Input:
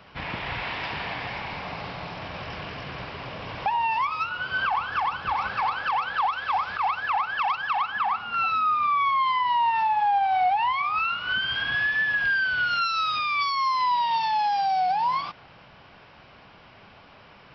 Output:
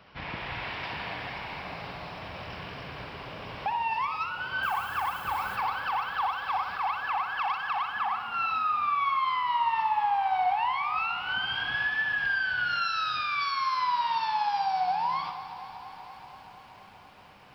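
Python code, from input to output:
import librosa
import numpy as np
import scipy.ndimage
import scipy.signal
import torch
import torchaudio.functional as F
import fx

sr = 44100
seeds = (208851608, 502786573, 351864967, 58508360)

y = fx.dmg_noise_colour(x, sr, seeds[0], colour='violet', level_db=-46.0, at=(4.62, 5.55), fade=0.02)
y = fx.echo_feedback(y, sr, ms=60, feedback_pct=46, wet_db=-9.5)
y = fx.echo_crushed(y, sr, ms=238, feedback_pct=80, bits=9, wet_db=-15.0)
y = F.gain(torch.from_numpy(y), -5.0).numpy()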